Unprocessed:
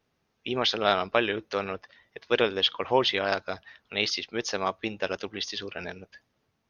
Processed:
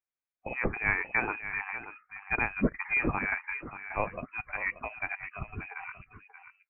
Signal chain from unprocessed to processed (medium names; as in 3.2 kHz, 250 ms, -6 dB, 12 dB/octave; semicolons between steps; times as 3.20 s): high-pass 1.1 kHz 6 dB/octave; formant shift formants -4 st; spectral noise reduction 22 dB; echo from a far wall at 100 m, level -10 dB; frequency inversion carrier 2.8 kHz